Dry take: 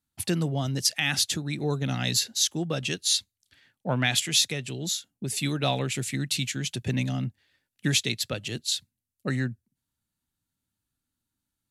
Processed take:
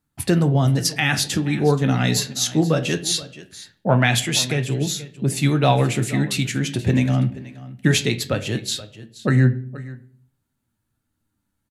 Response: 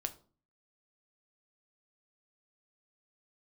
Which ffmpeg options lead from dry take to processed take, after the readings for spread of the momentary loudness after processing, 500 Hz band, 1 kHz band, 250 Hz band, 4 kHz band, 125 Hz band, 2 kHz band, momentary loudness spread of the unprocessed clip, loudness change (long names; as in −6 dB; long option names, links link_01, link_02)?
11 LU, +10.5 dB, +10.0 dB, +10.0 dB, +1.5 dB, +11.0 dB, +6.5 dB, 8 LU, +6.5 dB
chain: -filter_complex "[0:a]aecho=1:1:477:0.133,flanger=delay=6.5:depth=6.4:regen=64:speed=0.2:shape=triangular,asplit=2[link_01][link_02];[1:a]atrim=start_sample=2205,asetrate=27783,aresample=44100,lowpass=2300[link_03];[link_02][link_03]afir=irnorm=-1:irlink=0,volume=0.5dB[link_04];[link_01][link_04]amix=inputs=2:normalize=0,volume=7.5dB"